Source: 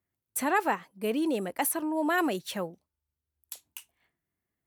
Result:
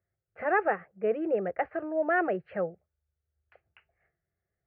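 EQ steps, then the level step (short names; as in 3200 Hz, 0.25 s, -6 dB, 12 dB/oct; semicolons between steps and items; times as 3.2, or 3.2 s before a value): Gaussian blur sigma 4.4 samples; fixed phaser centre 980 Hz, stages 6; +6.0 dB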